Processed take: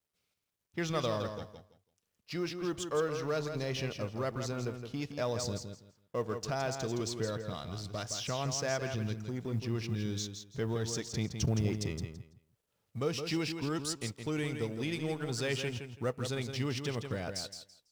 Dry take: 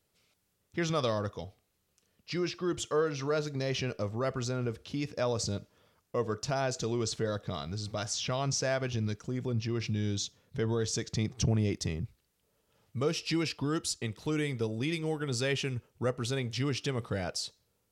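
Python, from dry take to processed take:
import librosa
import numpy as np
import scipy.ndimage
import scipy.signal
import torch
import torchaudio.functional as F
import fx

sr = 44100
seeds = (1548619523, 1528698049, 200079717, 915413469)

p1 = fx.law_mismatch(x, sr, coded='A')
p2 = p1 + fx.echo_feedback(p1, sr, ms=166, feedback_pct=21, wet_db=-7.5, dry=0)
y = F.gain(torch.from_numpy(p2), -2.0).numpy()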